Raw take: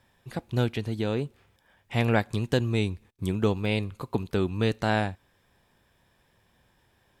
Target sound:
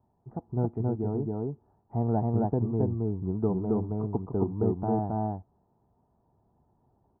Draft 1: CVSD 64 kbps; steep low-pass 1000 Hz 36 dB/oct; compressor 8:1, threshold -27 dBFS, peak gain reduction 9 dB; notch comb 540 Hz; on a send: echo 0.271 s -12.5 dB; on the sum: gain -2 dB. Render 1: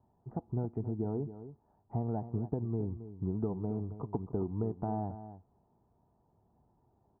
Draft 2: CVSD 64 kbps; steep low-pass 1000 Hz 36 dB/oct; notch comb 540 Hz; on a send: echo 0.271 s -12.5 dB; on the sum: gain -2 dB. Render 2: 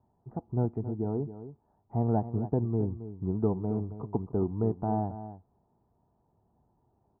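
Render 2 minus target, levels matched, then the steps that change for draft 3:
echo-to-direct -11.5 dB
change: echo 0.271 s -1 dB

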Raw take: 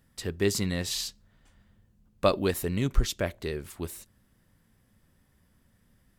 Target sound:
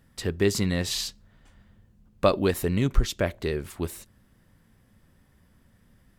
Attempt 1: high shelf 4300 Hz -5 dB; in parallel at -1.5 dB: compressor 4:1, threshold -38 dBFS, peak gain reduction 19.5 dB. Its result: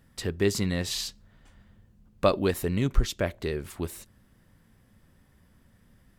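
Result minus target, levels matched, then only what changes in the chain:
compressor: peak gain reduction +8 dB
change: compressor 4:1, threshold -27.5 dBFS, peak gain reduction 11.5 dB

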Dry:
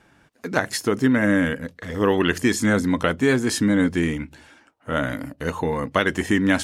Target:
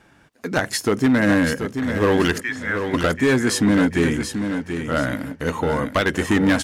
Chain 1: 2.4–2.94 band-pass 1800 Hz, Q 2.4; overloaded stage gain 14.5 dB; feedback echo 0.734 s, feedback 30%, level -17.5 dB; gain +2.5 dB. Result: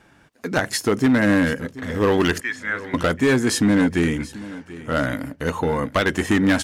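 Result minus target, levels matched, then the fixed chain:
echo-to-direct -10 dB
2.4–2.94 band-pass 1800 Hz, Q 2.4; overloaded stage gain 14.5 dB; feedback echo 0.734 s, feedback 30%, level -7.5 dB; gain +2.5 dB

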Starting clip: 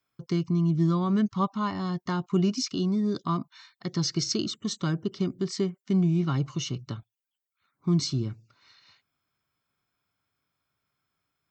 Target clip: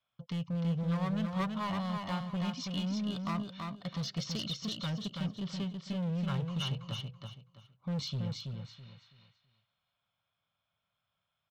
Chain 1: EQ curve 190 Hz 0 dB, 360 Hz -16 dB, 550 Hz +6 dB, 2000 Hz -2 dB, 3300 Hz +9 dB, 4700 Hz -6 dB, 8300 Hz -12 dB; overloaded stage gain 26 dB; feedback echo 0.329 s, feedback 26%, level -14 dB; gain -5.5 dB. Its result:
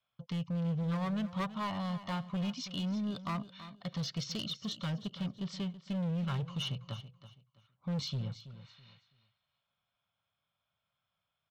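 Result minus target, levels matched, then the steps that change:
echo-to-direct -9.5 dB
change: feedback echo 0.329 s, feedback 26%, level -4.5 dB

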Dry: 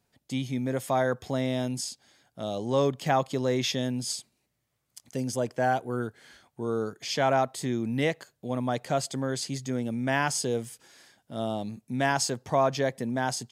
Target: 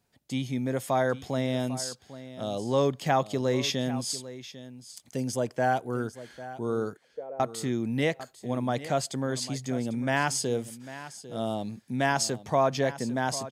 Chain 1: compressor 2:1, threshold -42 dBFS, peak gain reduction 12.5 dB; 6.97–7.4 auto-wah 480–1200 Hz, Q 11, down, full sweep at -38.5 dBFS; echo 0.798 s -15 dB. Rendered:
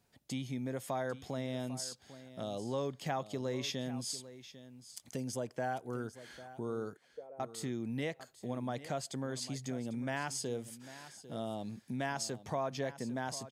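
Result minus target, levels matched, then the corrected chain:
compressor: peak gain reduction +12.5 dB
6.97–7.4 auto-wah 480–1200 Hz, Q 11, down, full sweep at -38.5 dBFS; echo 0.798 s -15 dB

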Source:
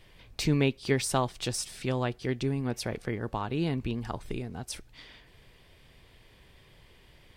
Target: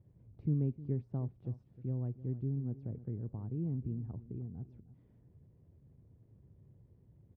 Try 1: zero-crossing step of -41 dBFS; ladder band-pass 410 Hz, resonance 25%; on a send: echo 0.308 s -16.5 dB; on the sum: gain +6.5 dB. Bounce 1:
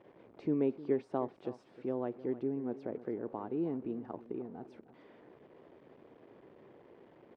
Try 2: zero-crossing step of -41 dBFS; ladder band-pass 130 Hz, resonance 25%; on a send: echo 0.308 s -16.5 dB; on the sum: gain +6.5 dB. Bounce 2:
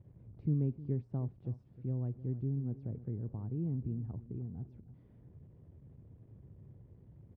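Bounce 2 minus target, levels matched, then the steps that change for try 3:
zero-crossing step: distortion +9 dB
change: zero-crossing step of -50.5 dBFS

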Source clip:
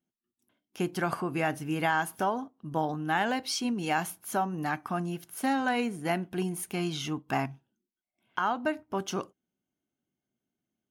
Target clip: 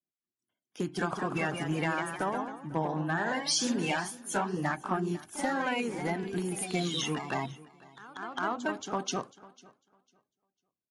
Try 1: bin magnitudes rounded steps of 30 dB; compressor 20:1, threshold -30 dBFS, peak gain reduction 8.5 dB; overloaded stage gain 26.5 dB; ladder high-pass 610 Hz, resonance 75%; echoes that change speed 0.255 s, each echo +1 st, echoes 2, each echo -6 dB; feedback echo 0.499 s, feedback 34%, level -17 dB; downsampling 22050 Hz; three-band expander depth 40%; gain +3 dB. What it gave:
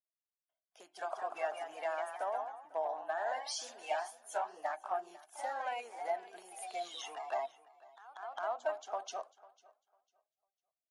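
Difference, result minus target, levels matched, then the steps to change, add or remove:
500 Hz band +4.0 dB
remove: ladder high-pass 610 Hz, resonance 75%

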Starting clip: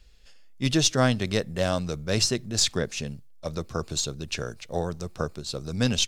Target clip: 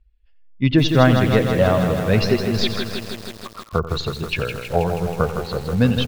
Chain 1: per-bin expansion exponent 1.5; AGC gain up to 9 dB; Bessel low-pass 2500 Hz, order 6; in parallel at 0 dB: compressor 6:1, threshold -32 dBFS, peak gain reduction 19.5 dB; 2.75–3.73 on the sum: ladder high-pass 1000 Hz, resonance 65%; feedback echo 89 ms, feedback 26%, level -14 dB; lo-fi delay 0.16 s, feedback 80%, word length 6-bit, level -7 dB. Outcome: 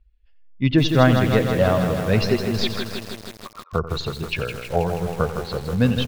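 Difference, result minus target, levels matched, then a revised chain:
compressor: peak gain reduction +7.5 dB
per-bin expansion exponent 1.5; AGC gain up to 9 dB; Bessel low-pass 2500 Hz, order 6; in parallel at 0 dB: compressor 6:1, threshold -23 dBFS, peak gain reduction 12 dB; 2.75–3.73 on the sum: ladder high-pass 1000 Hz, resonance 65%; feedback echo 89 ms, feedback 26%, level -14 dB; lo-fi delay 0.16 s, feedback 80%, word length 6-bit, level -7 dB

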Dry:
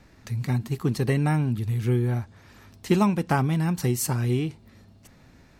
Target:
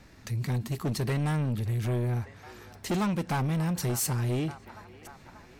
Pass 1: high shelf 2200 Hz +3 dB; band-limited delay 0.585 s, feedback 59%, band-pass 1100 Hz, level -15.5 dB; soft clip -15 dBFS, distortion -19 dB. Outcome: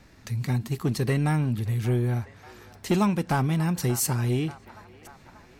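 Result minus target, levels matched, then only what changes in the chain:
soft clip: distortion -10 dB
change: soft clip -24.5 dBFS, distortion -9 dB

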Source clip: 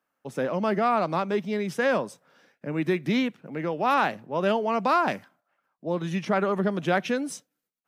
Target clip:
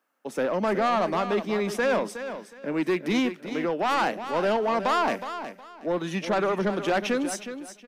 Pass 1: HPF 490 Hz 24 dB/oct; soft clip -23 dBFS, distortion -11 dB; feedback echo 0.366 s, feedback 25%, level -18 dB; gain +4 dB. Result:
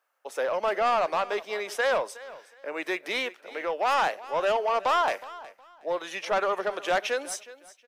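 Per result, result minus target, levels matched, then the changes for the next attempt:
250 Hz band -13.5 dB; echo-to-direct -7.5 dB
change: HPF 210 Hz 24 dB/oct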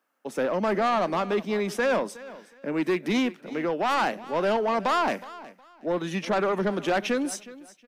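echo-to-direct -7.5 dB
change: feedback echo 0.366 s, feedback 25%, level -10.5 dB

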